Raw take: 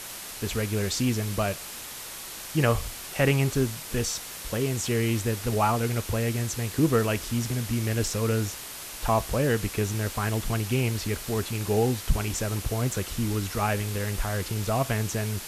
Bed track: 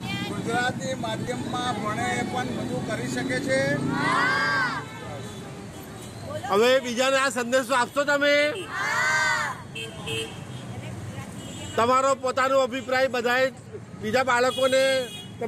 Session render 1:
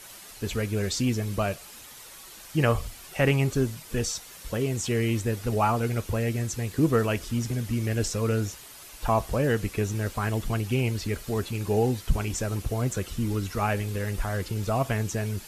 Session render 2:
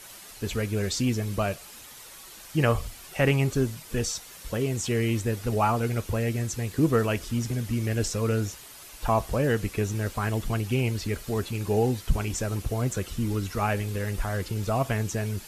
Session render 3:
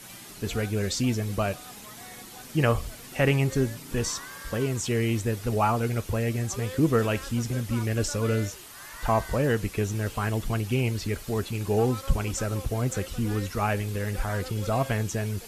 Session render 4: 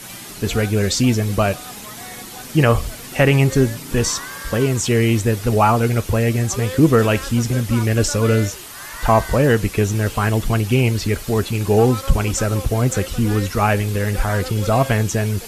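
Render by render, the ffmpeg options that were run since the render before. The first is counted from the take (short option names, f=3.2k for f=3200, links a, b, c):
-af "afftdn=nr=9:nf=-39"
-af anull
-filter_complex "[1:a]volume=-20.5dB[a];[0:a][a]amix=inputs=2:normalize=0"
-af "volume=9.5dB,alimiter=limit=-3dB:level=0:latency=1"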